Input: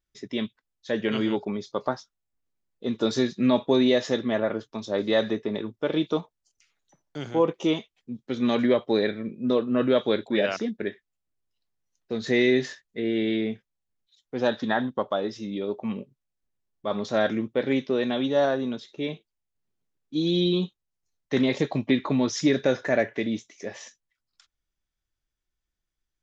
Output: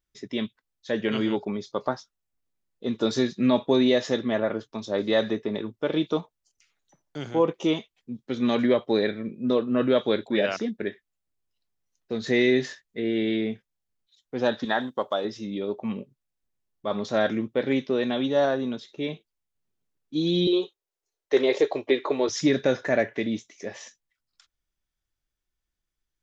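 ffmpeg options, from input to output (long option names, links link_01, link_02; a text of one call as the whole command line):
ffmpeg -i in.wav -filter_complex "[0:a]asettb=1/sr,asplit=3[link_01][link_02][link_03];[link_01]atrim=end=14.654[link_04];[link_02]atrim=start=14.65:end=15.25,asetpts=PTS-STARTPTS,afade=type=in:duration=0.004:curve=qsin,afade=type=out:start_time=0.596:duration=0.004:curve=qsin,bass=frequency=250:gain=-8,treble=frequency=4000:gain=9[link_05];[link_03]atrim=start=15.246[link_06];[link_04][link_05]acrossfade=duration=0.004:curve1=hsin:curve2=qsin[link_07];[link_07][link_06]acrossfade=duration=0.004:curve1=qsin:curve2=hsin,asettb=1/sr,asplit=3[link_08][link_09][link_10];[link_08]atrim=end=20.474[link_11];[link_09]atrim=start=20.47:end=22.29,asetpts=PTS-STARTPTS,afade=type=in:duration=0.004:curve=qsin,afade=type=out:start_time=1.816:duration=0.004:curve=qsin,lowshelf=frequency=280:width_type=q:width=3:gain=-13[link_12];[link_10]atrim=start=22.286[link_13];[link_11][link_12]acrossfade=duration=0.004:curve1=hsin:curve2=qsin[link_14];[link_14][link_13]acrossfade=duration=0.004:curve1=qsin:curve2=hsin" out.wav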